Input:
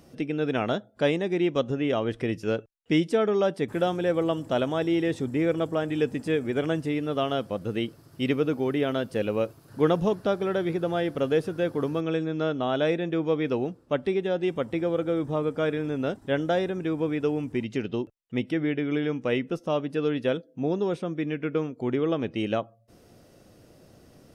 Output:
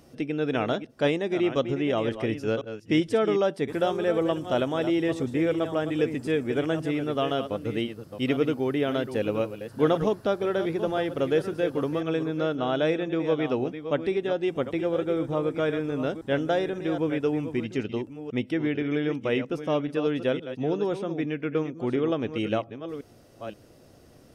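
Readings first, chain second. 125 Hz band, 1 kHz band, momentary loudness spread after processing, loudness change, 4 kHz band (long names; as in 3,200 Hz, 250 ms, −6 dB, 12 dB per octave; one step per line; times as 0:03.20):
−1.0 dB, +0.5 dB, 5 LU, 0.0 dB, +0.5 dB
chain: delay that plays each chunk backwards 523 ms, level −10 dB
parametric band 180 Hz −6.5 dB 0.21 octaves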